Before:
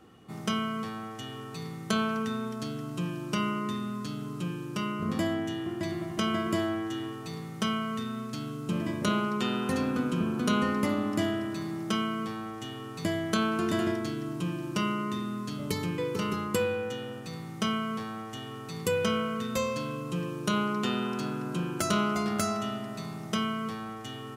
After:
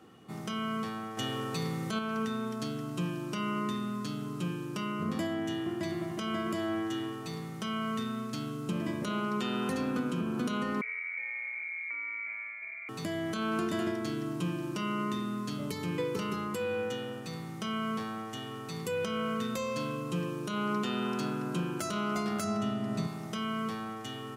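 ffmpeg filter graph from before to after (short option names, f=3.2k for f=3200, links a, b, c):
-filter_complex "[0:a]asettb=1/sr,asplit=3[a][b][c];[a]atrim=end=1.174[d];[b]atrim=start=1.17:end=1.99,asetpts=PTS-STARTPTS,afade=t=in:d=0.004:c=qsin,afade=t=out:st=0.816:d=0.004:c=qsin,acontrast=51,aeval=exprs='val(0)+0.00282*sin(2*PI*520*n/s)':c=same[e];[c]atrim=start=1.986[f];[d][e]acrossfade=d=0.004:c1=hsin:c2=qsin[g];[g][f]acrossfade=d=0.004:c1=qsin:c2=hsin,asettb=1/sr,asplit=3[h][i][j];[h]atrim=end=10.814[k];[i]atrim=start=10.81:end=12.89,asetpts=PTS-STARTPTS,afade=t=in:d=0.004:c=qsin,afade=t=out:st=2.076:d=0.004:c=qsin,equalizer=f=1.4k:w=0.61:g=-14.5,acompressor=threshold=-34dB:ratio=5:attack=3.2:release=140:knee=1:detection=peak,lowpass=f=2.1k:t=q:w=0.5098,lowpass=f=2.1k:t=q:w=0.6013,lowpass=f=2.1k:t=q:w=0.9,lowpass=f=2.1k:t=q:w=2.563,afreqshift=-2500[l];[j]atrim=start=12.886[m];[k][l]acrossfade=d=0.004:c1=hsin:c2=qsin[n];[n][m]acrossfade=d=0.004:c1=qsin:c2=hsin,asettb=1/sr,asplit=3[o][p][q];[o]atrim=end=22.444[r];[p]atrim=start=22.44:end=23.07,asetpts=PTS-STARTPTS,afade=t=in:d=0.004:c=qsin,afade=t=out:st=0.626:d=0.004:c=qsin,lowpass=12k,lowshelf=f=380:g=10[s];[q]atrim=start=23.066[t];[r][s]acrossfade=d=0.004:c1=hsin:c2=qsin[u];[u][t]acrossfade=d=0.004:c1=qsin:c2=hsin,highpass=110,alimiter=limit=-23dB:level=0:latency=1:release=254"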